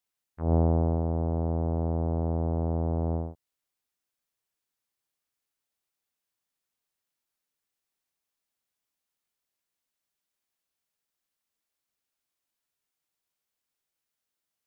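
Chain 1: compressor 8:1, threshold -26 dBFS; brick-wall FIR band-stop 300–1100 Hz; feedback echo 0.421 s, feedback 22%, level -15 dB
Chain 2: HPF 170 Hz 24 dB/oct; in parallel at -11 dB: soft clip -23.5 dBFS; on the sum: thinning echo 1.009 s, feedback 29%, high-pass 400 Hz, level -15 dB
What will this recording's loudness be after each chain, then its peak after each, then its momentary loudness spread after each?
-33.5, -31.0 LUFS; -23.0, -14.5 dBFS; 8, 22 LU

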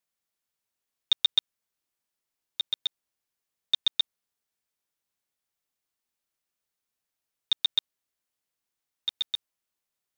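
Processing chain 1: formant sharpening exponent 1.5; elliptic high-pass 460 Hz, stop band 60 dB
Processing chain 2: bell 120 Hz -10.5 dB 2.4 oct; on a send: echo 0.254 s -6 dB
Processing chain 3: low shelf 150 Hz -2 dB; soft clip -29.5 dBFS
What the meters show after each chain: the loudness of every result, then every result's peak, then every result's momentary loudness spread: -28.5, -27.5, -39.5 LUFS; -13.0, -9.0, -29.5 dBFS; 12, 16, 6 LU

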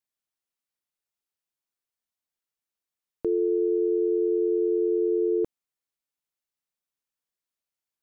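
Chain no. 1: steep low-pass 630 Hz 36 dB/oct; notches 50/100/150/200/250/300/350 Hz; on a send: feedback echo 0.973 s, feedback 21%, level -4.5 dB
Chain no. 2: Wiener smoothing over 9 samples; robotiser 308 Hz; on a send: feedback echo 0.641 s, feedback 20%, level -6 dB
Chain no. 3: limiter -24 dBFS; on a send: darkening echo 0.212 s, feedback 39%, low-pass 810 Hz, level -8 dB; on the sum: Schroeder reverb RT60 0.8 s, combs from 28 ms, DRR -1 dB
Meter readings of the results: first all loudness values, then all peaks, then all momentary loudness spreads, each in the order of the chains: -26.5, -30.0, -33.0 LUFS; -18.0, -20.0, -20.5 dBFS; 20, 17, 10 LU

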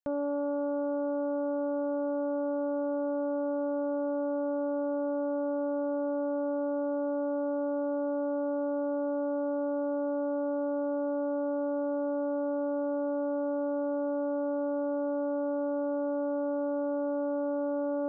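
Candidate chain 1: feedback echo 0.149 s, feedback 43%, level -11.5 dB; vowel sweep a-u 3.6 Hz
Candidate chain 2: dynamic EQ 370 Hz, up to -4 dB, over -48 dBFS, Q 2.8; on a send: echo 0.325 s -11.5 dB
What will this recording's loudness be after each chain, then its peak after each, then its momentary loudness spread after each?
-41.0, -33.5 LUFS; -31.0, -25.5 dBFS; 1, 0 LU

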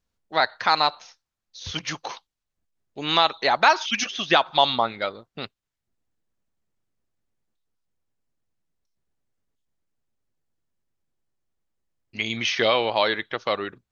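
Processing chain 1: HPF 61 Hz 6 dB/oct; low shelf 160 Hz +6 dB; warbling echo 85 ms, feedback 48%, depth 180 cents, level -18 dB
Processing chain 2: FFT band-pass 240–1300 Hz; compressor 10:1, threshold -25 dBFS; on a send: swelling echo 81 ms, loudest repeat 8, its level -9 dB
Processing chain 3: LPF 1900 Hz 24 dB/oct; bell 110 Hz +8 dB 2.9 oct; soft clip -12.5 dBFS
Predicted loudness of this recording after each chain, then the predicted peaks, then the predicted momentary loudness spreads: -22.5, -31.0, -25.5 LUFS; -2.5, -12.0, -12.5 dBFS; 18, 14, 16 LU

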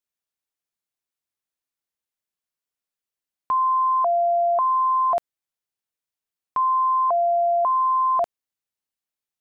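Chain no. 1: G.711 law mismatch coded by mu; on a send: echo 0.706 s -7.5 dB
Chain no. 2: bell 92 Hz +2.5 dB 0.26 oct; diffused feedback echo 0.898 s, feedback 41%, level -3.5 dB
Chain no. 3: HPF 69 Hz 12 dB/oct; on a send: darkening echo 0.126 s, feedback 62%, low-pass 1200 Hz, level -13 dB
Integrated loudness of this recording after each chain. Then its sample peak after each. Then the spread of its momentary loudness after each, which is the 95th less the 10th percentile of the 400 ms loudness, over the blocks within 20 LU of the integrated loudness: -20.5, -21.5, -20.0 LUFS; -13.5, -11.5, -14.0 dBFS; 11, 6, 8 LU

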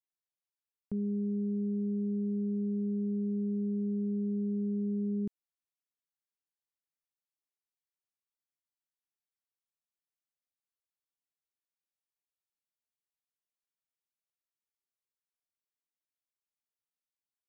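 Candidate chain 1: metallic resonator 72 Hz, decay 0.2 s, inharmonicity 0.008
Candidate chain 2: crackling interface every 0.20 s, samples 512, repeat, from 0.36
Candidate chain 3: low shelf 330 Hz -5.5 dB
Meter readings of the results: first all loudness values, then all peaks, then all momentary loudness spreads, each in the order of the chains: -42.5, -33.5, -37.0 LUFS; -34.0, -28.5, -31.5 dBFS; 1, 2, 2 LU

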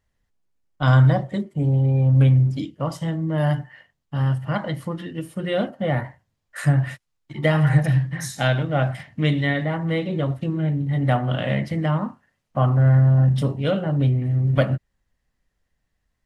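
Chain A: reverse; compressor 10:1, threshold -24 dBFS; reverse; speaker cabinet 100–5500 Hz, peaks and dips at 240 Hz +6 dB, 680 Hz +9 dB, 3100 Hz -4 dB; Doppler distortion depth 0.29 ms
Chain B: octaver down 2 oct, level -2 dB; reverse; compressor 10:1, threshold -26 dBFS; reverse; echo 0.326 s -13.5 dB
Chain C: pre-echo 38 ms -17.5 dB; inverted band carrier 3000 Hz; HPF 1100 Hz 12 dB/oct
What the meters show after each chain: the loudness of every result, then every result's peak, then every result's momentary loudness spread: -28.5, -32.0, -16.5 LUFS; -13.0, -16.0, -3.5 dBFS; 6, 7, 14 LU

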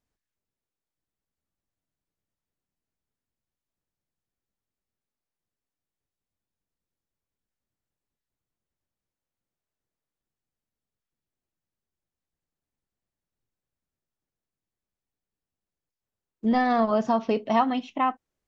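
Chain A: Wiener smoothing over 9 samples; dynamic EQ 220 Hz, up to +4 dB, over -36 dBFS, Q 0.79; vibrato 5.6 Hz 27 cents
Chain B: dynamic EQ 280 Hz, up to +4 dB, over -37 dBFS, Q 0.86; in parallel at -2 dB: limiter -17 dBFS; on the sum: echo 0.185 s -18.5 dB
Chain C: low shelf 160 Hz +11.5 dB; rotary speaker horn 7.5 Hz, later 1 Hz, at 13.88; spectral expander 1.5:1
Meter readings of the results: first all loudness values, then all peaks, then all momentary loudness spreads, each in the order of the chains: -22.5, -19.0, -25.0 LUFS; -8.5, -6.0, -12.0 dBFS; 6, 6, 9 LU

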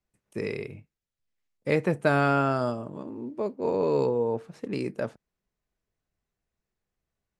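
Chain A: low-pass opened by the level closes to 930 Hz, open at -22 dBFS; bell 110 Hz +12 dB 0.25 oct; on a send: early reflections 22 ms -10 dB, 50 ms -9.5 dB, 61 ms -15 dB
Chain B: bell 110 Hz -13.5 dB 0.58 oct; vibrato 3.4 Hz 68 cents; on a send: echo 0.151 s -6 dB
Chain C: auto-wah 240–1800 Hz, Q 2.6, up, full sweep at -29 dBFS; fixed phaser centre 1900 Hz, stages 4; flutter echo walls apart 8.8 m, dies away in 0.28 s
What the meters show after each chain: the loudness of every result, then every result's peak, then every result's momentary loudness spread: -26.5, -27.5, -39.5 LUFS; -10.5, -8.0, -21.0 dBFS; 15, 15, 21 LU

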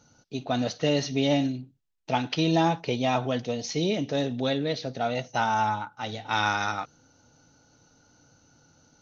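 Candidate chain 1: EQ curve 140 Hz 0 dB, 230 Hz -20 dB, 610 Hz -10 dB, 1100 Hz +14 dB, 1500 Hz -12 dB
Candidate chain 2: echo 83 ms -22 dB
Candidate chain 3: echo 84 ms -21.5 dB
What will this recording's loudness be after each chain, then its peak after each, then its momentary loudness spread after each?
-28.5, -27.5, -27.0 LUFS; -10.0, -11.0, -11.0 dBFS; 15, 9, 9 LU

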